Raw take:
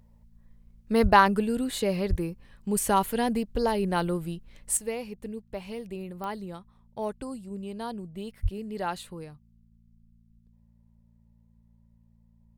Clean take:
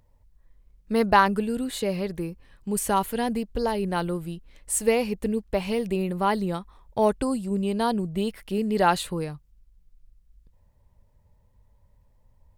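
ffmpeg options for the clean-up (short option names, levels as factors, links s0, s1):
-filter_complex "[0:a]adeclick=t=4,bandreject=f=56.7:t=h:w=4,bandreject=f=113.4:t=h:w=4,bandreject=f=170.1:t=h:w=4,bandreject=f=226.8:t=h:w=4,asplit=3[s0][s1][s2];[s0]afade=t=out:st=1.02:d=0.02[s3];[s1]highpass=f=140:w=0.5412,highpass=f=140:w=1.3066,afade=t=in:st=1.02:d=0.02,afade=t=out:st=1.14:d=0.02[s4];[s2]afade=t=in:st=1.14:d=0.02[s5];[s3][s4][s5]amix=inputs=3:normalize=0,asplit=3[s6][s7][s8];[s6]afade=t=out:st=2.09:d=0.02[s9];[s7]highpass=f=140:w=0.5412,highpass=f=140:w=1.3066,afade=t=in:st=2.09:d=0.02,afade=t=out:st=2.21:d=0.02[s10];[s8]afade=t=in:st=2.21:d=0.02[s11];[s9][s10][s11]amix=inputs=3:normalize=0,asplit=3[s12][s13][s14];[s12]afade=t=out:st=8.42:d=0.02[s15];[s13]highpass=f=140:w=0.5412,highpass=f=140:w=1.3066,afade=t=in:st=8.42:d=0.02,afade=t=out:st=8.54:d=0.02[s16];[s14]afade=t=in:st=8.54:d=0.02[s17];[s15][s16][s17]amix=inputs=3:normalize=0,asetnsamples=n=441:p=0,asendcmd='4.77 volume volume 11dB',volume=1"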